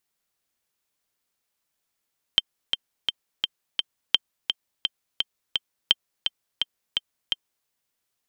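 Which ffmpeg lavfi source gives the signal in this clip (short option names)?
-f lavfi -i "aevalsrc='pow(10,(-3-6.5*gte(mod(t,5*60/170),60/170))/20)*sin(2*PI*3140*mod(t,60/170))*exp(-6.91*mod(t,60/170)/0.03)':d=5.29:s=44100"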